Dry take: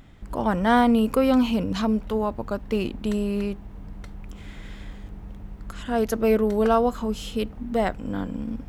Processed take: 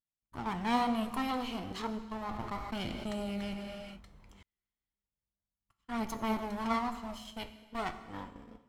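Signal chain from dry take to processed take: comb filter that takes the minimum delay 0.95 ms; flange 1 Hz, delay 4.3 ms, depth 7.9 ms, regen +67%; tilt EQ +1.5 dB/octave; phaser 0.32 Hz, delay 2.8 ms, feedback 27%; gate -38 dBFS, range -42 dB; treble shelf 9.5 kHz -10 dB; gated-style reverb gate 450 ms falling, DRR 9.5 dB; 2.29–4.43 s: level flattener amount 70%; trim -6.5 dB

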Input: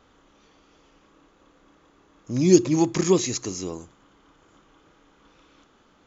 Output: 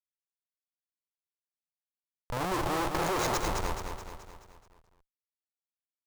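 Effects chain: Schmitt trigger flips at -26.5 dBFS; ten-band graphic EQ 125 Hz -4 dB, 250 Hz -8 dB, 500 Hz +4 dB, 1 kHz +8 dB; feedback delay 214 ms, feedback 51%, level -6 dB; trim -3.5 dB

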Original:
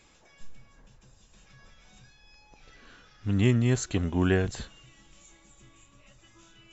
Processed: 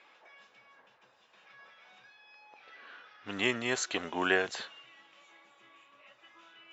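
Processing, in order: level-controlled noise filter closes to 2.7 kHz, open at -21 dBFS; band-pass 650–5400 Hz; trim +5 dB

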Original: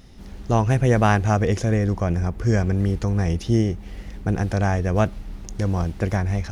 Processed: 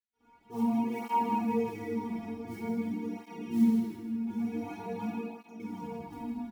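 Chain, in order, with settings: tape stop on the ending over 0.78 s; in parallel at +3 dB: peak limiter -17 dBFS, peak gain reduction 10.5 dB; on the sum: vowel filter u; crossover distortion -48.5 dBFS; inharmonic resonator 230 Hz, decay 0.53 s, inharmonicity 0.002; modulation noise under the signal 27 dB; on a send: feedback delay 158 ms, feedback 50%, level -6.5 dB; on the sum: simulated room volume 1800 m³, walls mixed, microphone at 4.2 m; cancelling through-zero flanger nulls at 0.46 Hz, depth 6.9 ms; trim +9 dB

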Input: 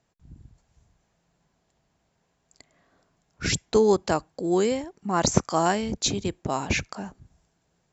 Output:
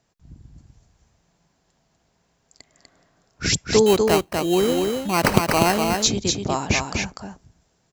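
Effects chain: peaking EQ 5.3 kHz +4 dB 0.77 oct; 3.86–5.83 s: sample-rate reducer 3.5 kHz, jitter 0%; delay 246 ms -4 dB; trim +3 dB

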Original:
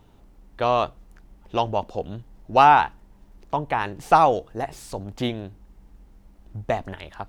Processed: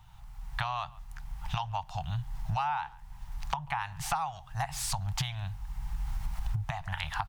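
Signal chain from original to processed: recorder AGC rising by 22 dB/s; elliptic band-stop 150–810 Hz, stop band 40 dB; speakerphone echo 140 ms, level -28 dB; compression 8:1, threshold -29 dBFS, peak gain reduction 17 dB

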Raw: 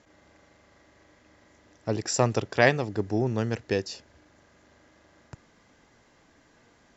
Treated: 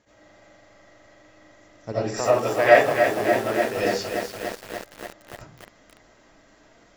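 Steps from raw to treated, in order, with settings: 1.92–3.77 s: tone controls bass -13 dB, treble -11 dB; algorithmic reverb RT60 0.41 s, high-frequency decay 0.4×, pre-delay 45 ms, DRR -10 dB; bit-crushed delay 290 ms, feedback 80%, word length 5-bit, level -6 dB; trim -5 dB

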